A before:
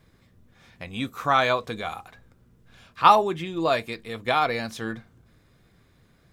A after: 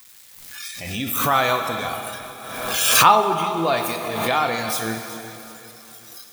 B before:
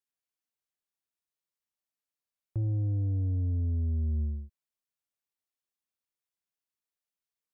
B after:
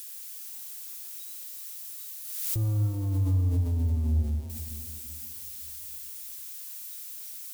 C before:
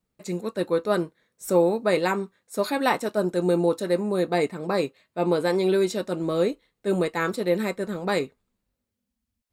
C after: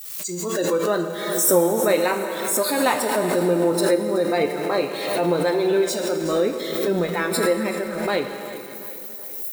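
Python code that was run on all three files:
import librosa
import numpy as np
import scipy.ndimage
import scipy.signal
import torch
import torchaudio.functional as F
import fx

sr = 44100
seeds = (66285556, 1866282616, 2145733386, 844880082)

p1 = x + 0.5 * 10.0 ** (-20.0 / 20.0) * np.diff(np.sign(x), prepend=np.sign(x[:1]))
p2 = fx.noise_reduce_blind(p1, sr, reduce_db=17)
p3 = p2 + fx.echo_feedback(p2, sr, ms=375, feedback_pct=45, wet_db=-15.5, dry=0)
p4 = fx.rev_plate(p3, sr, seeds[0], rt60_s=2.9, hf_ratio=1.0, predelay_ms=0, drr_db=5.0)
p5 = fx.pre_swell(p4, sr, db_per_s=41.0)
y = F.gain(torch.from_numpy(p5), 1.0).numpy()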